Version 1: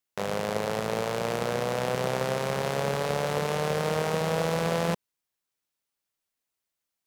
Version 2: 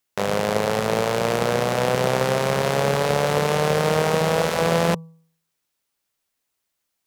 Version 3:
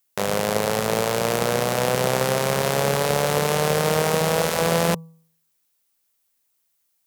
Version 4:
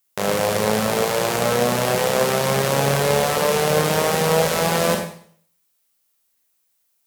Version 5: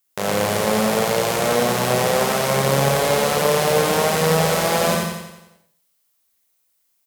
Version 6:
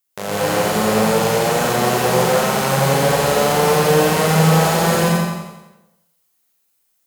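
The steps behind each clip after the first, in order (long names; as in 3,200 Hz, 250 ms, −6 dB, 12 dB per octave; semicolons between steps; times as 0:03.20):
hum removal 163.2 Hz, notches 7; level +7.5 dB
high-shelf EQ 7,400 Hz +11.5 dB; level −1 dB
four-comb reverb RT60 0.55 s, combs from 29 ms, DRR 1.5 dB
repeating echo 88 ms, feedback 53%, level −4 dB; level −1 dB
dense smooth reverb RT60 0.87 s, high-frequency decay 0.6×, pre-delay 115 ms, DRR −5 dB; level −3.5 dB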